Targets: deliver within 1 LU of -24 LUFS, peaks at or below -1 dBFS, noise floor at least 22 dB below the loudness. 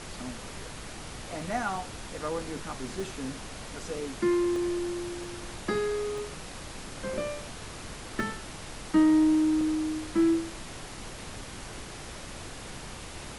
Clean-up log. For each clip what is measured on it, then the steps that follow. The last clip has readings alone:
dropouts 7; longest dropout 1.7 ms; noise floor -42 dBFS; noise floor target -54 dBFS; loudness -31.5 LUFS; peak level -13.5 dBFS; loudness target -24.0 LUFS
-> interpolate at 1.41/3.00/4.56/5.24/6.18/8.20/9.61 s, 1.7 ms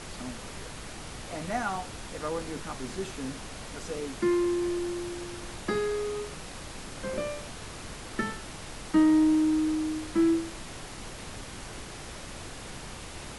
dropouts 0; noise floor -42 dBFS; noise floor target -54 dBFS
-> noise print and reduce 12 dB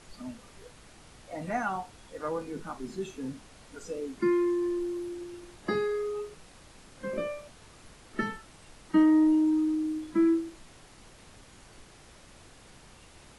noise floor -54 dBFS; loudness -29.5 LUFS; peak level -14.0 dBFS; loudness target -24.0 LUFS
-> trim +5.5 dB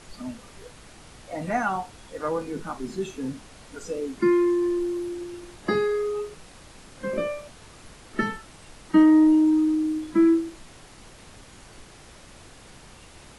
loudness -24.0 LUFS; peak level -8.5 dBFS; noise floor -49 dBFS

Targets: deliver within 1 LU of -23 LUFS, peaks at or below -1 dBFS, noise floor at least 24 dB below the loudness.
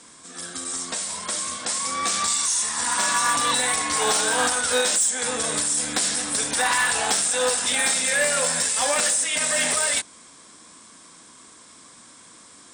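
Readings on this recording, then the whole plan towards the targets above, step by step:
clipped samples 0.1%; clipping level -14.5 dBFS; loudness -21.0 LUFS; peak level -14.5 dBFS; loudness target -23.0 LUFS
-> clip repair -14.5 dBFS; trim -2 dB

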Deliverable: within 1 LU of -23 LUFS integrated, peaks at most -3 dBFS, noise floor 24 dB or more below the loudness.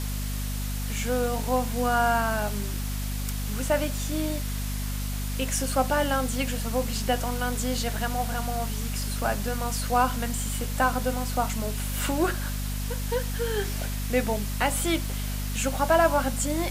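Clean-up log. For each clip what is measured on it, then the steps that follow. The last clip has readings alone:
hum 50 Hz; highest harmonic 250 Hz; hum level -28 dBFS; noise floor -30 dBFS; noise floor target -52 dBFS; loudness -27.5 LUFS; peak level -9.0 dBFS; loudness target -23.0 LUFS
-> hum notches 50/100/150/200/250 Hz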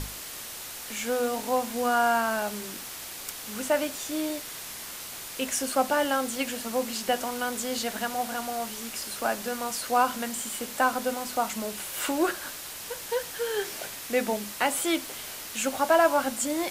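hum not found; noise floor -40 dBFS; noise floor target -53 dBFS
-> noise reduction 13 dB, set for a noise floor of -40 dBFS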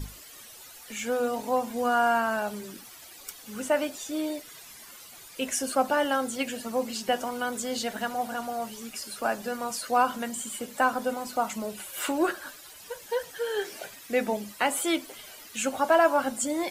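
noise floor -48 dBFS; noise floor target -53 dBFS
-> noise reduction 6 dB, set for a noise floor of -48 dBFS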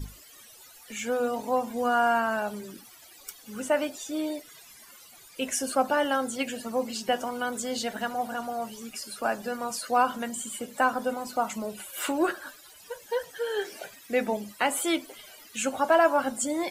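noise floor -52 dBFS; noise floor target -53 dBFS
-> noise reduction 6 dB, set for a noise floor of -52 dBFS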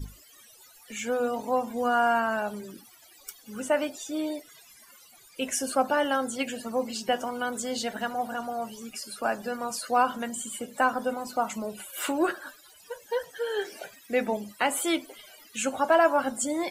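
noise floor -55 dBFS; loudness -28.5 LUFS; peak level -10.5 dBFS; loudness target -23.0 LUFS
-> trim +5.5 dB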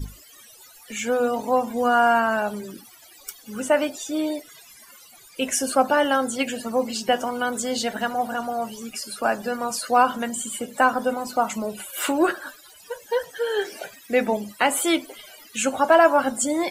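loudness -23.0 LUFS; peak level -5.0 dBFS; noise floor -49 dBFS

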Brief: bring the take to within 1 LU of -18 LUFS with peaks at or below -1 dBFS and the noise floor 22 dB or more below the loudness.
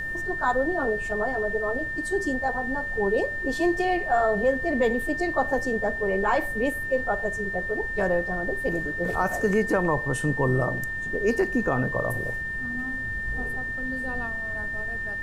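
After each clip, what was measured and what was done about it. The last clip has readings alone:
steady tone 1.8 kHz; tone level -29 dBFS; noise floor -31 dBFS; noise floor target -48 dBFS; loudness -26.0 LUFS; peak level -11.0 dBFS; loudness target -18.0 LUFS
-> band-stop 1.8 kHz, Q 30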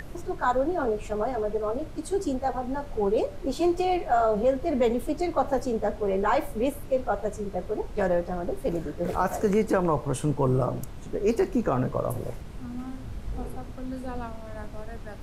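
steady tone not found; noise floor -40 dBFS; noise floor target -50 dBFS
-> noise print and reduce 10 dB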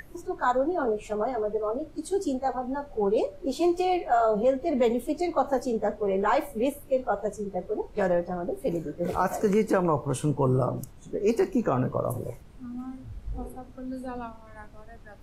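noise floor -48 dBFS; noise floor target -50 dBFS
-> noise print and reduce 6 dB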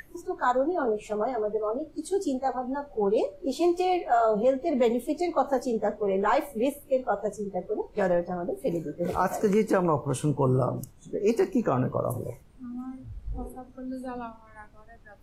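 noise floor -52 dBFS; loudness -27.5 LUFS; peak level -12.5 dBFS; loudness target -18.0 LUFS
-> trim +9.5 dB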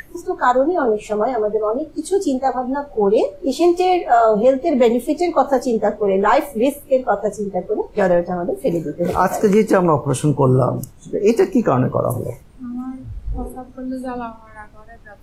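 loudness -18.0 LUFS; peak level -3.0 dBFS; noise floor -43 dBFS

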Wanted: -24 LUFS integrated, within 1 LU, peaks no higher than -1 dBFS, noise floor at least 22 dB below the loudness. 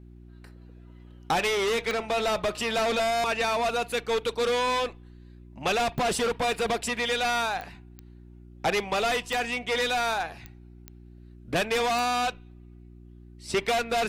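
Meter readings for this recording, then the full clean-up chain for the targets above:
clicks found 8; hum 60 Hz; highest harmonic 360 Hz; hum level -46 dBFS; loudness -27.0 LUFS; peak level -17.5 dBFS; loudness target -24.0 LUFS
-> de-click; de-hum 60 Hz, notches 6; trim +3 dB

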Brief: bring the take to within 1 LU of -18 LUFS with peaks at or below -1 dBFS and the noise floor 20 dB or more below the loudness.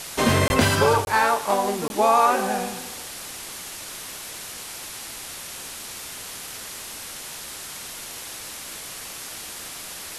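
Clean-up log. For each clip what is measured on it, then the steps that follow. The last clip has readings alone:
dropouts 3; longest dropout 21 ms; noise floor -37 dBFS; noise floor target -46 dBFS; loudness -25.5 LUFS; peak level -7.0 dBFS; loudness target -18.0 LUFS
-> interpolate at 0.48/1.05/1.88 s, 21 ms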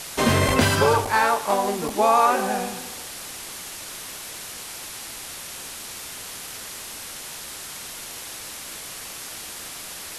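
dropouts 0; noise floor -37 dBFS; noise floor target -46 dBFS
-> noise reduction 9 dB, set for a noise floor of -37 dBFS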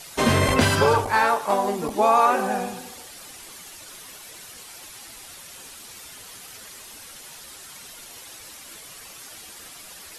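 noise floor -43 dBFS; loudness -20.5 LUFS; peak level -7.0 dBFS; loudness target -18.0 LUFS
-> trim +2.5 dB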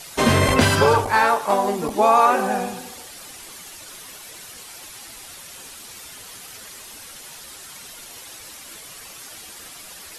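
loudness -18.0 LUFS; peak level -4.5 dBFS; noise floor -41 dBFS

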